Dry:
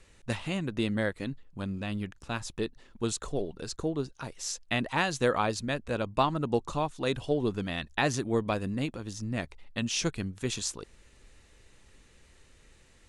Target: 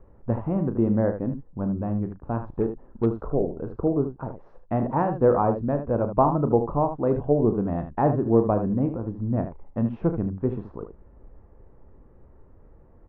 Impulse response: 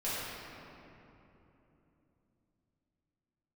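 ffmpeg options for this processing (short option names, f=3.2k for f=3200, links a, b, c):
-filter_complex "[0:a]lowpass=f=1k:w=0.5412,lowpass=f=1k:w=1.3066,aecho=1:1:35|76:0.282|0.335,asettb=1/sr,asplit=3[a][b][c];[a]atrim=end=2.574[d];[b]atrim=start=2.57:end=3.06,asetpts=PTS-STARTPTS,afade=t=in:d=0.004:c=qsin,afade=t=out:st=0.486:d=0.004:c=qsin,aeval=exprs='0.119*(cos(1*acos(clip(val(0)/0.119,-1,1)))-cos(1*PI/2))+0.00299*(cos(8*acos(clip(val(0)/0.119,-1,1)))-cos(8*PI/2))':c=same[e];[c]atrim=start=3.056[f];[d][e]acrossfade=d=0.004:c1=hsin:c2=qsin[g];[g][f]acrossfade=d=0.004:c1=qsin:c2=hsin,volume=7.5dB"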